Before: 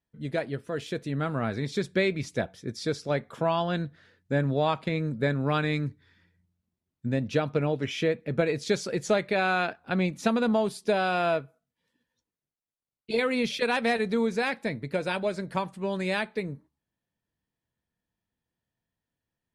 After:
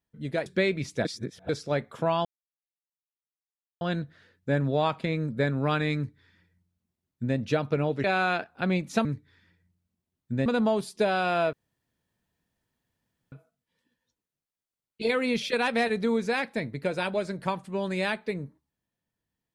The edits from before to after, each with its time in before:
0.46–1.85 cut
2.44–2.88 reverse
3.64 insert silence 1.56 s
5.79–7.2 copy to 10.34
7.87–9.33 cut
11.41 insert room tone 1.79 s

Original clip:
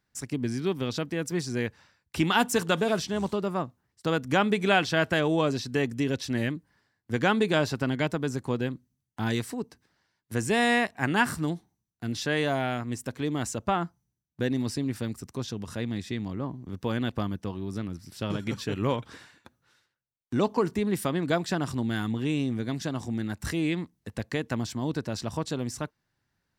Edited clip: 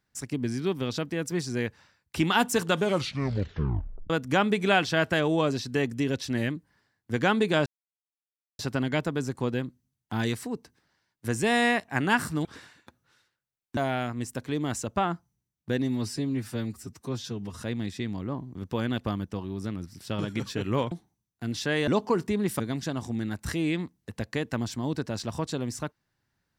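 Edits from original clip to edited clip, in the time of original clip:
2.76 tape stop 1.34 s
7.66 insert silence 0.93 s
11.52–12.48 swap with 19.03–20.35
14.53–15.72 stretch 1.5×
21.07–22.58 cut

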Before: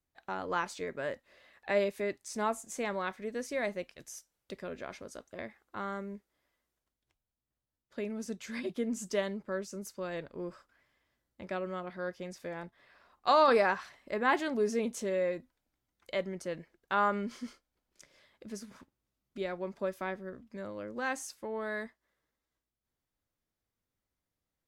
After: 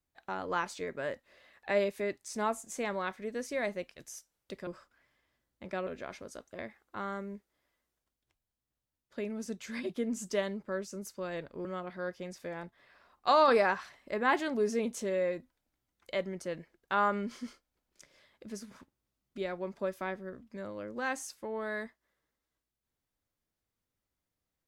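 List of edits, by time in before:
10.45–11.65 move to 4.67

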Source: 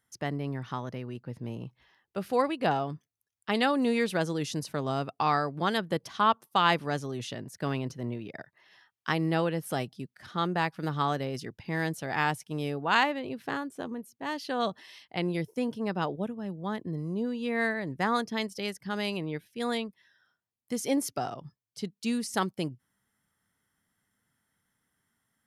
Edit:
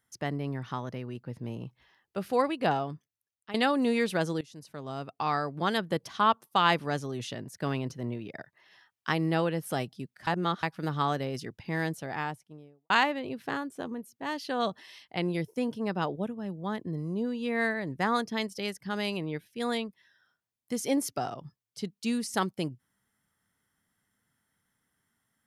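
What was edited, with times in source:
2.71–3.54 fade out, to -14 dB
4.41–5.73 fade in, from -21 dB
10.27–10.63 reverse
11.71–12.9 studio fade out

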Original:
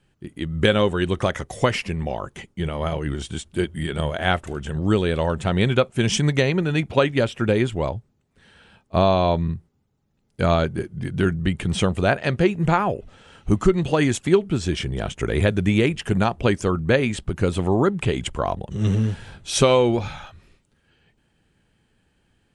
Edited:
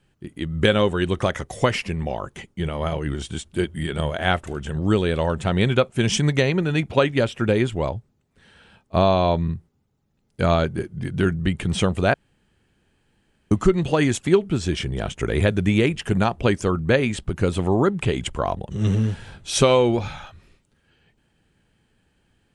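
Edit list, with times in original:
12.14–13.51 room tone

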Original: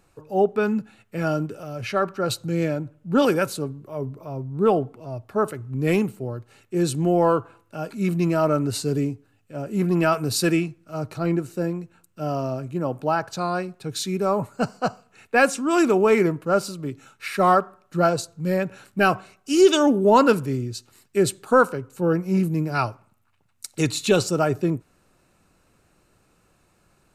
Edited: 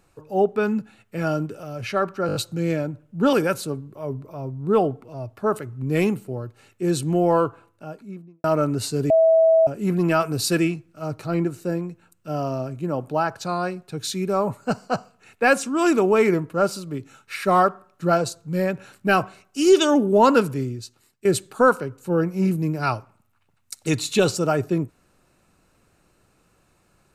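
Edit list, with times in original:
2.27 stutter 0.02 s, 5 plays
7.36–8.36 studio fade out
9.02–9.59 bleep 650 Hz -12 dBFS
20.47–21.17 fade out, to -12.5 dB

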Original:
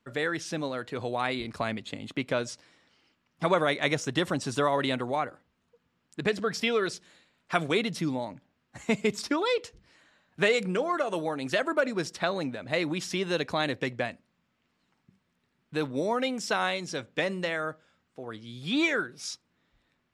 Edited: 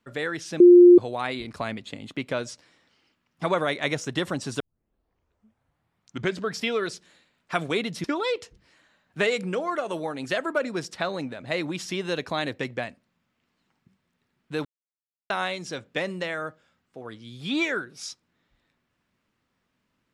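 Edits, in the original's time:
0.6–0.98 bleep 353 Hz -7.5 dBFS
4.6 tape start 1.90 s
8.04–9.26 cut
15.87–16.52 mute

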